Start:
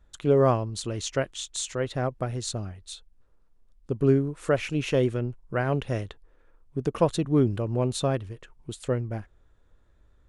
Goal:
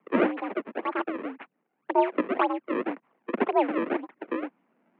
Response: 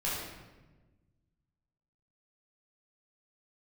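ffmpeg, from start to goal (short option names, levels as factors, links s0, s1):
-af "asetrate=90846,aresample=44100,acrusher=samples=36:mix=1:aa=0.000001:lfo=1:lforange=57.6:lforate=1.9,highpass=f=160:t=q:w=0.5412,highpass=f=160:t=q:w=1.307,lowpass=f=2500:t=q:w=0.5176,lowpass=f=2500:t=q:w=0.7071,lowpass=f=2500:t=q:w=1.932,afreqshift=72"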